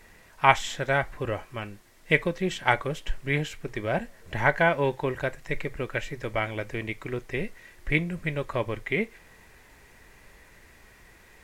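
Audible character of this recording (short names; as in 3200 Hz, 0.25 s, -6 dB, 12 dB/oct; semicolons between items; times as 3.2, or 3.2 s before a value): noise floor -55 dBFS; spectral tilt -4.0 dB/oct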